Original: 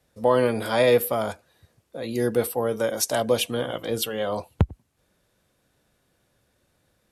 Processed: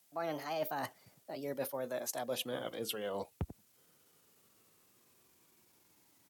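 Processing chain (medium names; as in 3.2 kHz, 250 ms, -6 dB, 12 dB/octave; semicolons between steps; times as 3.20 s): gliding tape speed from 162% -> 64%; high-pass 180 Hz 12 dB/octave; reverse; compression 4:1, threshold -35 dBFS, peak gain reduction 17 dB; reverse; added noise blue -67 dBFS; pitch shift -3 st; trim -2.5 dB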